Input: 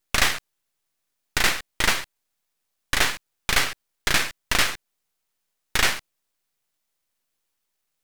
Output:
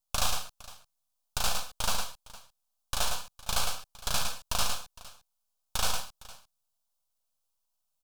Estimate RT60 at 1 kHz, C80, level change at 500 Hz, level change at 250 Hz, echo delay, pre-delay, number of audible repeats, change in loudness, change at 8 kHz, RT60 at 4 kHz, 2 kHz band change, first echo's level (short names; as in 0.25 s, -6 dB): none, none, -7.5 dB, -11.5 dB, 57 ms, none, 3, -9.0 dB, -5.0 dB, none, -16.0 dB, -10.5 dB